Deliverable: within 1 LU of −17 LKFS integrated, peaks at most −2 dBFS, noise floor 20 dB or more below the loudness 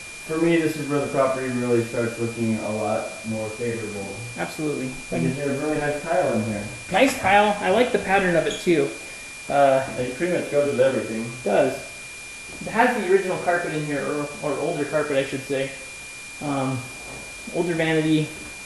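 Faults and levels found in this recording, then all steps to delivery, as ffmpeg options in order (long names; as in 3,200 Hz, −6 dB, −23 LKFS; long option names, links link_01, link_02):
interfering tone 2,400 Hz; level of the tone −37 dBFS; background noise floor −38 dBFS; target noise floor −43 dBFS; integrated loudness −23.0 LKFS; sample peak −4.5 dBFS; target loudness −17.0 LKFS
→ -af "bandreject=frequency=2400:width=30"
-af "afftdn=noise_reduction=6:noise_floor=-38"
-af "volume=6dB,alimiter=limit=-2dB:level=0:latency=1"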